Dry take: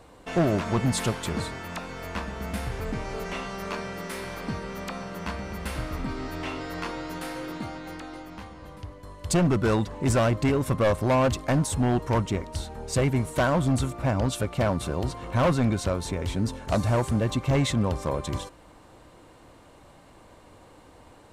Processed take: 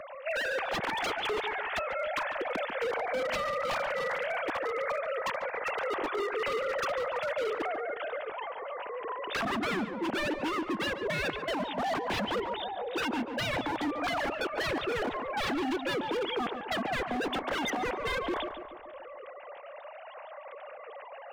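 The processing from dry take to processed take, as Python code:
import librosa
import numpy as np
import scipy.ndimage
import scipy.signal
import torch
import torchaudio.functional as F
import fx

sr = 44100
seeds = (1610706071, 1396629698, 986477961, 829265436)

p1 = fx.sine_speech(x, sr)
p2 = fx.rider(p1, sr, range_db=5, speed_s=0.5)
p3 = 10.0 ** (-26.5 / 20.0) * (np.abs((p2 / 10.0 ** (-26.5 / 20.0) + 3.0) % 4.0 - 2.0) - 1.0)
p4 = p3 + fx.echo_filtered(p3, sr, ms=143, feedback_pct=46, hz=2100.0, wet_db=-9, dry=0)
y = fx.band_squash(p4, sr, depth_pct=40)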